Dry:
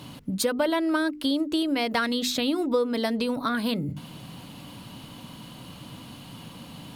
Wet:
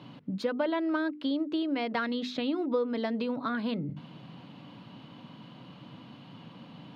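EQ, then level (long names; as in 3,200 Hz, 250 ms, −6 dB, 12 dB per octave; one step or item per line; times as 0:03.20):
high-pass filter 120 Hz 24 dB per octave
high-frequency loss of the air 250 metres
−4.0 dB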